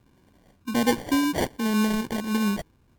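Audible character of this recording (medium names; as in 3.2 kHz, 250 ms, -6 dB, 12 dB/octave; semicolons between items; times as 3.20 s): phasing stages 2, 1.3 Hz, lowest notch 600–1500 Hz; aliases and images of a low sample rate 1.3 kHz, jitter 0%; MP3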